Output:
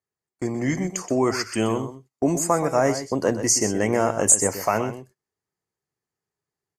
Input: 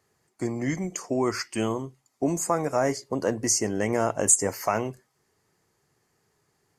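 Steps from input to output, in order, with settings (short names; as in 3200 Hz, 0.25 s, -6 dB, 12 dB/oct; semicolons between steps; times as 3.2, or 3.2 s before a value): gate -42 dBFS, range -22 dB; AGC gain up to 4 dB; on a send: echo 0.125 s -11 dB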